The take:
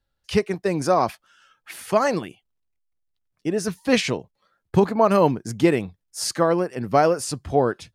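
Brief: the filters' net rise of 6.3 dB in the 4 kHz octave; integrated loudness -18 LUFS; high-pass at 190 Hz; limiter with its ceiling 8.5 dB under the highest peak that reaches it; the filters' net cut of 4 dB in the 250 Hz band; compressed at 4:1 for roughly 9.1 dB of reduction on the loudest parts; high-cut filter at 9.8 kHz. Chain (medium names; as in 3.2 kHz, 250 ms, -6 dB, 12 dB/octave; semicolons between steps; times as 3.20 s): high-pass 190 Hz; low-pass 9.8 kHz; peaking EQ 250 Hz -4 dB; peaking EQ 4 kHz +8.5 dB; compression 4:1, threshold -24 dBFS; trim +14 dB; peak limiter -6 dBFS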